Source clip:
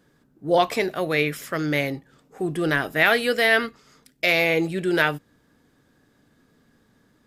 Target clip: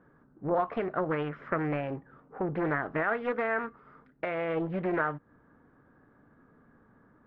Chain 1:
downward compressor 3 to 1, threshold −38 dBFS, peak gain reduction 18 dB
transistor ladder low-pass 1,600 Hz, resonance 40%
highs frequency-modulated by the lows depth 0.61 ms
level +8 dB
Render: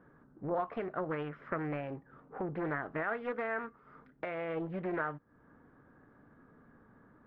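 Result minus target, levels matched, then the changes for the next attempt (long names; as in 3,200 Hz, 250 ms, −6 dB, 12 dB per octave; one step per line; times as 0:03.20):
downward compressor: peak gain reduction +6 dB
change: downward compressor 3 to 1, threshold −29 dBFS, peak gain reduction 12 dB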